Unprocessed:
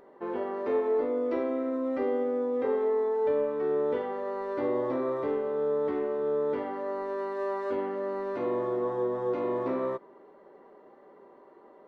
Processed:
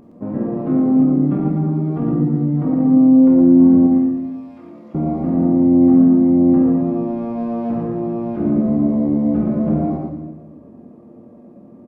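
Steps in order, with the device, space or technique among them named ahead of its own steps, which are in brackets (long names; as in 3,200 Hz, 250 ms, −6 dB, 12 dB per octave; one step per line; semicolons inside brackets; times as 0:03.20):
0:03.87–0:04.95: first difference
monster voice (pitch shifter −9 semitones; low-shelf EQ 230 Hz +7.5 dB; single-tap delay 115 ms −6 dB; convolution reverb RT60 1.2 s, pre-delay 25 ms, DRR 3 dB)
level +6 dB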